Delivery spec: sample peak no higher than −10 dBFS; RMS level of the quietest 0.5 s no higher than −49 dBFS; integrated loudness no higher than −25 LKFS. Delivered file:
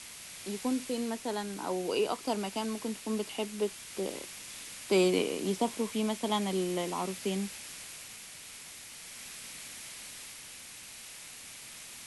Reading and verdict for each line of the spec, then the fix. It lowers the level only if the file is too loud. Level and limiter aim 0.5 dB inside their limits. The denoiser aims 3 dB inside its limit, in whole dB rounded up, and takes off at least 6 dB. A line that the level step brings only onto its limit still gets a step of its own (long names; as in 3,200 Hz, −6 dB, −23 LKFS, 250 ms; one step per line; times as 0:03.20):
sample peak −15.0 dBFS: in spec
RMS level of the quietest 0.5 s −48 dBFS: out of spec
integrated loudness −34.5 LKFS: in spec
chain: broadband denoise 6 dB, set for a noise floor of −48 dBFS